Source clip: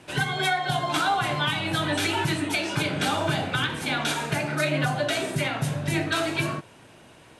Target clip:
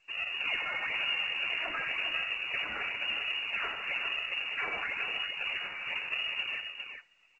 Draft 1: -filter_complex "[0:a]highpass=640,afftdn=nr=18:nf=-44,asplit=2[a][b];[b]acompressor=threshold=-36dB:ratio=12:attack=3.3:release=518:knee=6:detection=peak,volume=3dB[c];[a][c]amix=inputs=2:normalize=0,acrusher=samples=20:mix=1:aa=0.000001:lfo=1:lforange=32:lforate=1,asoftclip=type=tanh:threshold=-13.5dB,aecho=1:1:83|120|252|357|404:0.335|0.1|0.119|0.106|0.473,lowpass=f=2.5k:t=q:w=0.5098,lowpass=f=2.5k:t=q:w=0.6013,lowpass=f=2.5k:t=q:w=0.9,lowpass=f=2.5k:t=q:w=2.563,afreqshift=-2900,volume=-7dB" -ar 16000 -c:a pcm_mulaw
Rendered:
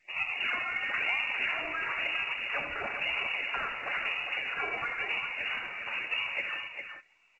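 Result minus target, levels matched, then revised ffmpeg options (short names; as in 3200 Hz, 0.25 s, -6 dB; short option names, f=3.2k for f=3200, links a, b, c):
soft clip: distortion -11 dB; decimation with a swept rate: distortion -7 dB
-filter_complex "[0:a]highpass=640,afftdn=nr=18:nf=-44,asplit=2[a][b];[b]acompressor=threshold=-36dB:ratio=12:attack=3.3:release=518:knee=6:detection=peak,volume=3dB[c];[a][c]amix=inputs=2:normalize=0,acrusher=samples=39:mix=1:aa=0.000001:lfo=1:lforange=62.4:lforate=1,asoftclip=type=tanh:threshold=-20.5dB,aecho=1:1:83|120|252|357|404:0.335|0.1|0.119|0.106|0.473,lowpass=f=2.5k:t=q:w=0.5098,lowpass=f=2.5k:t=q:w=0.6013,lowpass=f=2.5k:t=q:w=0.9,lowpass=f=2.5k:t=q:w=2.563,afreqshift=-2900,volume=-7dB" -ar 16000 -c:a pcm_mulaw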